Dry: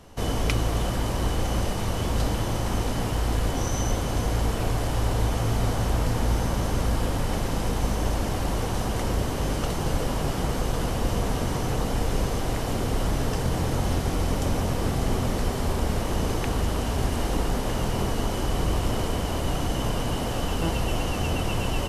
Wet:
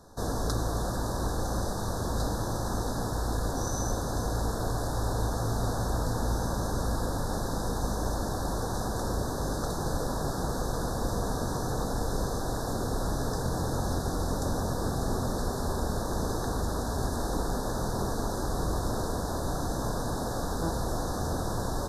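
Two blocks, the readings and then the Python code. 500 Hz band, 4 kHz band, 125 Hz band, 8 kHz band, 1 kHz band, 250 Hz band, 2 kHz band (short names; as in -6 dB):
-3.0 dB, -7.0 dB, -5.5 dB, -2.0 dB, -2.5 dB, -4.0 dB, -6.5 dB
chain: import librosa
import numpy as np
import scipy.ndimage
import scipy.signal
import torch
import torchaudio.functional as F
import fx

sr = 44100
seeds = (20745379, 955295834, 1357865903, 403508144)

y = scipy.signal.sosfilt(scipy.signal.cheby1(4, 1.0, [1700.0, 3700.0], 'bandstop', fs=sr, output='sos'), x)
y = fx.low_shelf(y, sr, hz=170.0, db=-3.5)
y = y * 10.0 ** (-2.0 / 20.0)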